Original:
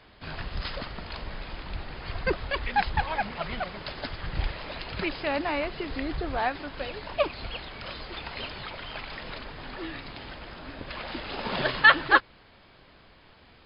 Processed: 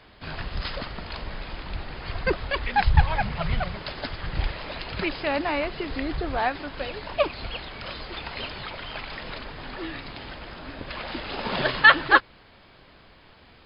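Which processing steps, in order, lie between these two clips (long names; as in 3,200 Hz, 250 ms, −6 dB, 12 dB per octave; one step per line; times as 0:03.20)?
0:02.83–0:03.76: low shelf with overshoot 180 Hz +10 dB, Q 1.5
level +2.5 dB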